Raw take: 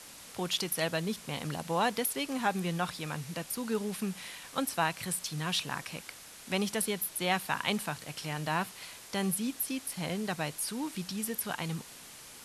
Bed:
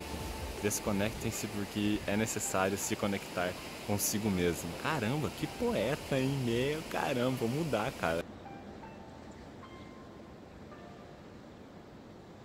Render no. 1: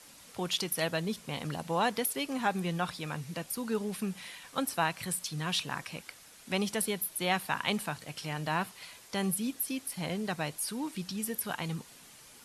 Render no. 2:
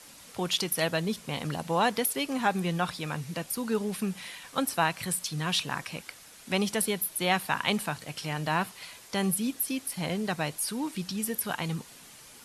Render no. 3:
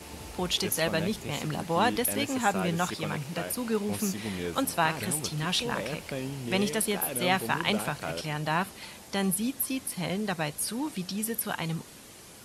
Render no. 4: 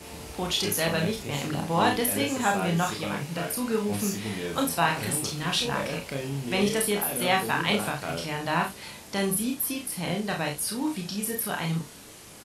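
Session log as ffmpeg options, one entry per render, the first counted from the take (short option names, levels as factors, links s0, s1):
-af "afftdn=nr=6:nf=-50"
-af "volume=1.5"
-filter_complex "[1:a]volume=0.668[s0];[0:a][s0]amix=inputs=2:normalize=0"
-filter_complex "[0:a]asplit=2[s0][s1];[s1]adelay=36,volume=0.447[s2];[s0][s2]amix=inputs=2:normalize=0,aecho=1:1:29|49:0.531|0.355"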